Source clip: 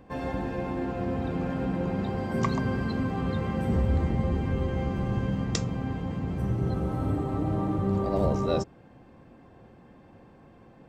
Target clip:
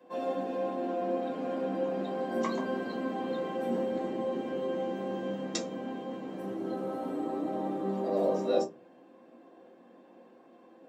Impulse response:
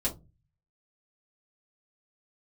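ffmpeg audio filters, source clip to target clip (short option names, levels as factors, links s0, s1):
-filter_complex "[0:a]highpass=f=290:w=0.5412,highpass=f=290:w=1.3066[s0];[1:a]atrim=start_sample=2205[s1];[s0][s1]afir=irnorm=-1:irlink=0,volume=0.398"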